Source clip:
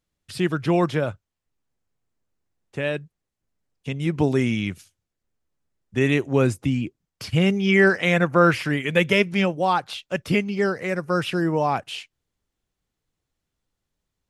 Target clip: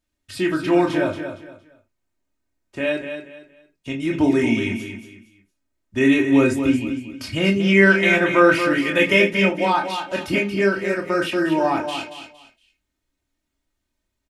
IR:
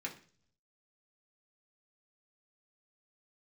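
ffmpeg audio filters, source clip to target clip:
-filter_complex "[0:a]aecho=1:1:3.2:0.69,aecho=1:1:231|462|693:0.376|0.105|0.0295,asplit=2[a][b];[1:a]atrim=start_sample=2205,atrim=end_sample=3528,adelay=23[c];[b][c]afir=irnorm=-1:irlink=0,volume=-2dB[d];[a][d]amix=inputs=2:normalize=0,volume=-1dB"

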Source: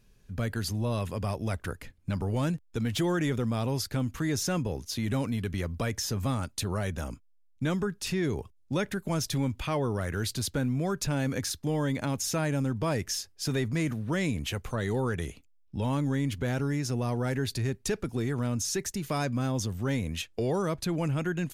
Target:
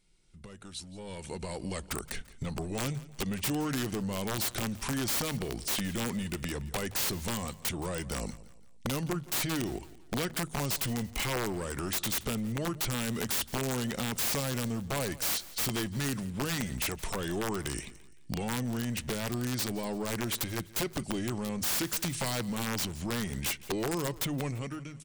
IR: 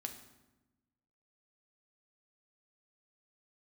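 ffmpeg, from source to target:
-filter_complex "[0:a]asoftclip=type=tanh:threshold=-24dB,acompressor=threshold=-37dB:ratio=12,equalizer=f=100:t=o:w=0.67:g=-10,equalizer=f=1.6k:t=o:w=0.67:g=-5,equalizer=f=6.3k:t=o:w=0.67:g=-4,dynaudnorm=f=750:g=3:m=15.5dB,highshelf=f=3.2k:g=10,bandreject=f=60:t=h:w=6,bandreject=f=120:t=h:w=6,bandreject=f=180:t=h:w=6,asetrate=37926,aresample=44100,aresample=22050,aresample=44100,aeval=exprs='(mod(7.94*val(0)+1,2)-1)/7.94':c=same,asplit=2[a][b];[b]aecho=0:1:170|340|510:0.112|0.046|0.0189[c];[a][c]amix=inputs=2:normalize=0,volume=-7dB"

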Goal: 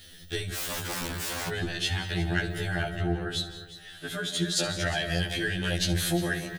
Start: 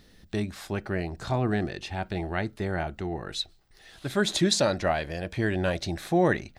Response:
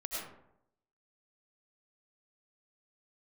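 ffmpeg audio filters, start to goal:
-filter_complex "[0:a]acompressor=threshold=-29dB:ratio=6,equalizer=f=125:t=o:w=0.33:g=11,equalizer=f=250:t=o:w=0.33:g=-5,equalizer=f=1k:t=o:w=0.33:g=-8,equalizer=f=1.6k:t=o:w=0.33:g=9,equalizer=f=3.15k:t=o:w=0.33:g=11,equalizer=f=10k:t=o:w=0.33:g=3,asoftclip=type=tanh:threshold=-16.5dB,asettb=1/sr,asplit=3[a][b][c];[a]atrim=end=2.894[d];[b]atrim=start=2.89:end=4.57,asetpts=PTS-STARTPTS,afade=t=in:d=0.004:c=qsin,afade=t=out:st=1.676:d=0.004:c=qsin,highshelf=f=2.5k:g=-11.5[e];[c]atrim=start=4.566[f];[d][e]acrossfade=d=0.004:c1=hsin:c2=qsin[g];[g][f]acrossfade=d=0.004:c1=qsin:c2=hsin,asplit=2[h][i];[1:a]atrim=start_sample=2205,lowshelf=f=250:g=11.5,adelay=69[j];[i][j]afir=irnorm=-1:irlink=0,volume=-11.5dB[k];[h][k]amix=inputs=2:normalize=0,crystalizer=i=3:c=0,aecho=1:1:355:0.168,asettb=1/sr,asplit=3[l][m][n];[l]atrim=end=0.564[o];[m]atrim=start=0.56:end=1.49,asetpts=PTS-STARTPTS,afade=t=in:d=0.004:c=qsin,afade=t=out:st=0.926:d=0.004:c=qsin,aeval=exprs='(mod(26.6*val(0)+1,2)-1)/26.6':c=same[p];[n]atrim=start=1.486[q];[o][p]acrossfade=d=0.004:c1=hsin:c2=qsin[r];[r][q]acrossfade=d=0.004:c1=qsin:c2=hsin,afftfilt=real='re*2*eq(mod(b,4),0)':imag='im*2*eq(mod(b,4),0)':win_size=2048:overlap=0.75,volume=3dB"

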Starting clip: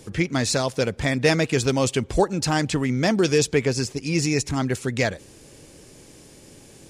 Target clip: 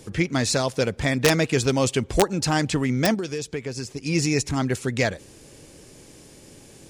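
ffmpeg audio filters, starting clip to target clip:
-filter_complex "[0:a]asettb=1/sr,asplit=3[a][b][c];[a]atrim=end=3.144[d];[b]atrim=start=3.14:end=4.06,asetpts=PTS-STARTPTS,afade=t=in:d=0.004:c=qsin,afade=t=out:st=0.916:d=0.004:c=qsin,acompressor=threshold=-28dB:ratio=4[e];[c]atrim=start=4.056[f];[d][e]acrossfade=d=0.004:c1=hsin:c2=qsin[g];[g][f]acrossfade=d=0.004:c1=qsin:c2=hsin,aeval=exprs='(mod(2.51*val(0)+1,2)-1)/2.51':c=same"

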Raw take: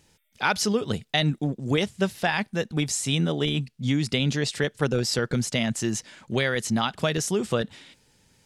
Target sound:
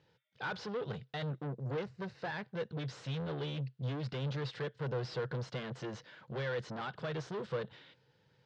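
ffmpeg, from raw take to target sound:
-filter_complex "[0:a]asettb=1/sr,asplit=3[a][b][c];[a]atrim=end=1.434[d];[b]atrim=start=1.43:end=2.45,asetpts=PTS-STARTPTS,afade=t=in:d=0.004:c=qsin,afade=t=out:st=1.016:d=0.004:c=qsin,equalizer=f=3.3k:w=5.5:g=-14.5[e];[c]atrim=start=2.446[f];[d][e]acrossfade=d=0.004:c1=hsin:c2=qsin[g];[g][f]acrossfade=d=0.004:c1=qsin:c2=hsin,aeval=exprs='(tanh(35.5*val(0)+0.5)-tanh(0.5))/35.5':c=same,highpass=100,equalizer=f=130:t=q:w=4:g=10,equalizer=f=240:t=q:w=4:g=-8,equalizer=f=490:t=q:w=4:g=8,equalizer=f=1k:t=q:w=4:g=3,equalizer=f=1.5k:t=q:w=4:g=5,equalizer=f=2.4k:t=q:w=4:g=-4,lowpass=f=4.2k:w=0.5412,lowpass=f=4.2k:w=1.3066,volume=-6.5dB"

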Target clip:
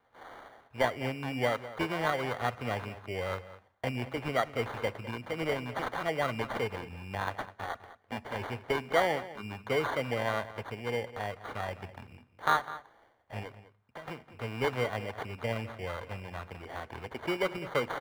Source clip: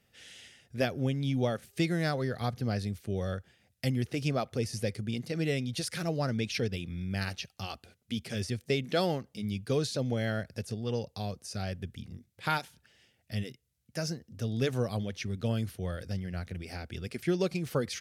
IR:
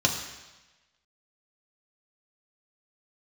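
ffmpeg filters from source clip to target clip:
-filter_complex "[0:a]asettb=1/sr,asplit=3[a][b][c];[a]atrim=end=13.474[d];[b]atrim=start=13.47:end=14.08,asetpts=PTS-STARTPTS,afade=t=in:d=0.004:c=qsin,afade=t=out:st=0.606:d=0.004:c=qsin,acompressor=threshold=-44dB:ratio=8[e];[c]atrim=start=14.076[f];[d][e]acrossfade=d=0.004:c1=hsin:c2=qsin[g];[g][f]acrossfade=d=0.004:c1=qsin:c2=hsin,acrusher=samples=17:mix=1:aa=0.000001,acrossover=split=530 2900:gain=0.224 1 0.158[h][i][j];[h][i][j]amix=inputs=3:normalize=0,asplit=2[k][l];[l]adelay=204.1,volume=-15dB,highshelf=f=4k:g=-4.59[m];[k][m]amix=inputs=2:normalize=0,asplit=2[n][o];[1:a]atrim=start_sample=2205,asetrate=66150,aresample=44100[p];[o][p]afir=irnorm=-1:irlink=0,volume=-24dB[q];[n][q]amix=inputs=2:normalize=0,volume=5.5dB"

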